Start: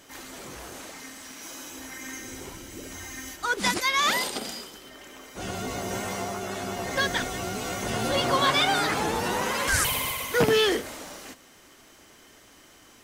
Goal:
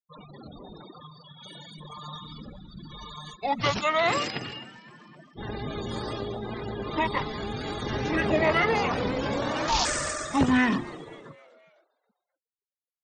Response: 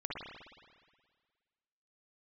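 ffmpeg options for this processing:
-filter_complex "[0:a]bandreject=frequency=60:width_type=h:width=6,bandreject=frequency=120:width_type=h:width=6,bandreject=frequency=180:width_type=h:width=6,bandreject=frequency=240:width_type=h:width=6,bandreject=frequency=300:width_type=h:width=6,bandreject=frequency=360:width_type=h:width=6,bandreject=frequency=420:width_type=h:width=6,asetrate=25476,aresample=44100,atempo=1.73107,afftfilt=real='re*gte(hypot(re,im),0.0158)':imag='im*gte(hypot(re,im),0.0158)':win_size=1024:overlap=0.75,asplit=2[link_01][link_02];[link_02]asplit=4[link_03][link_04][link_05][link_06];[link_03]adelay=259,afreqshift=98,volume=-22dB[link_07];[link_04]adelay=518,afreqshift=196,volume=-27.4dB[link_08];[link_05]adelay=777,afreqshift=294,volume=-32.7dB[link_09];[link_06]adelay=1036,afreqshift=392,volume=-38.1dB[link_10];[link_07][link_08][link_09][link_10]amix=inputs=4:normalize=0[link_11];[link_01][link_11]amix=inputs=2:normalize=0"

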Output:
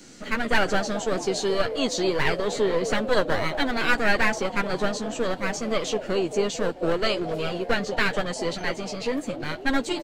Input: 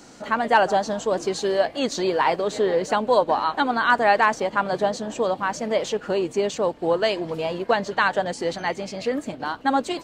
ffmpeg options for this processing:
ffmpeg -i in.wav -filter_complex "[0:a]acrossover=split=230|570|1500[link_01][link_02][link_03][link_04];[link_02]asplit=9[link_05][link_06][link_07][link_08][link_09][link_10][link_11][link_12][link_13];[link_06]adelay=221,afreqshift=56,volume=-7dB[link_14];[link_07]adelay=442,afreqshift=112,volume=-11.4dB[link_15];[link_08]adelay=663,afreqshift=168,volume=-15.9dB[link_16];[link_09]adelay=884,afreqshift=224,volume=-20.3dB[link_17];[link_10]adelay=1105,afreqshift=280,volume=-24.7dB[link_18];[link_11]adelay=1326,afreqshift=336,volume=-29.2dB[link_19];[link_12]adelay=1547,afreqshift=392,volume=-33.6dB[link_20];[link_13]adelay=1768,afreqshift=448,volume=-38.1dB[link_21];[link_05][link_14][link_15][link_16][link_17][link_18][link_19][link_20][link_21]amix=inputs=9:normalize=0[link_22];[link_03]aeval=exprs='abs(val(0))':channel_layout=same[link_23];[link_04]asplit=2[link_24][link_25];[link_25]adelay=13,volume=-3.5dB[link_26];[link_24][link_26]amix=inputs=2:normalize=0[link_27];[link_01][link_22][link_23][link_27]amix=inputs=4:normalize=0" out.wav

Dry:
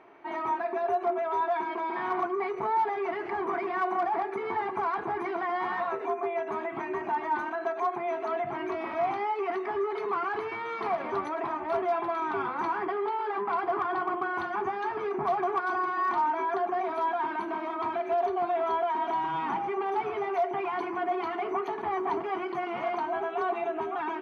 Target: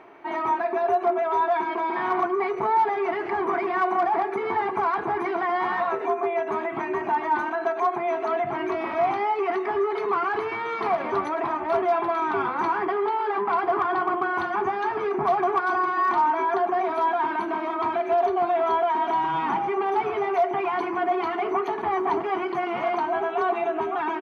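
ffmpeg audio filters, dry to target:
ffmpeg -i in.wav -filter_complex "[0:a]asplit=2[link_01][link_02];[link_02]adelay=279.9,volume=-21dB,highshelf=frequency=4000:gain=-6.3[link_03];[link_01][link_03]amix=inputs=2:normalize=0,areverse,acompressor=mode=upward:threshold=-45dB:ratio=2.5,areverse,volume=5.5dB" out.wav

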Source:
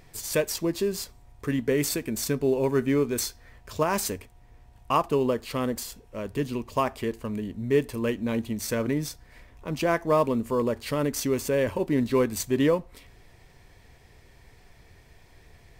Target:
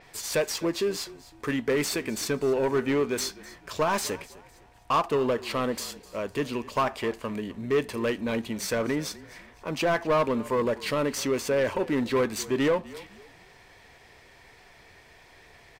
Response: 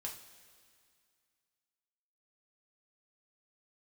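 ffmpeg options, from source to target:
-filter_complex "[0:a]asplit=2[link_01][link_02];[link_02]highpass=frequency=720:poles=1,volume=17dB,asoftclip=type=tanh:threshold=-11.5dB[link_03];[link_01][link_03]amix=inputs=2:normalize=0,lowpass=frequency=4000:poles=1,volume=-6dB,asplit=4[link_04][link_05][link_06][link_07];[link_05]adelay=253,afreqshift=-36,volume=-19.5dB[link_08];[link_06]adelay=506,afreqshift=-72,volume=-29.1dB[link_09];[link_07]adelay=759,afreqshift=-108,volume=-38.8dB[link_10];[link_04][link_08][link_09][link_10]amix=inputs=4:normalize=0,adynamicequalizer=threshold=0.01:dfrequency=7000:dqfactor=0.7:tfrequency=7000:tqfactor=0.7:attack=5:release=100:ratio=0.375:range=2:mode=cutabove:tftype=highshelf,volume=-4dB"

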